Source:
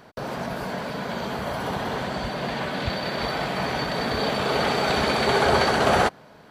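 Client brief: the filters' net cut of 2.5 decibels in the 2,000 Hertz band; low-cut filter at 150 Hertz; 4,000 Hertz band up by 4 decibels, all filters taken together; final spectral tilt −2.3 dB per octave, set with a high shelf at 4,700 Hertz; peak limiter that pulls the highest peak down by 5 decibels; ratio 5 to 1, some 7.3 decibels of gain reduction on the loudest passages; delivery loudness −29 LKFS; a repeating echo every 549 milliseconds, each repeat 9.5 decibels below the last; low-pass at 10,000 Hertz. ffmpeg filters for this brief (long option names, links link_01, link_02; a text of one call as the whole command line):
ffmpeg -i in.wav -af "highpass=150,lowpass=10000,equalizer=frequency=2000:width_type=o:gain=-4.5,equalizer=frequency=4000:width_type=o:gain=8.5,highshelf=frequency=4700:gain=-5,acompressor=threshold=-24dB:ratio=5,alimiter=limit=-19.5dB:level=0:latency=1,aecho=1:1:549|1098|1647|2196:0.335|0.111|0.0365|0.012,volume=-0.5dB" out.wav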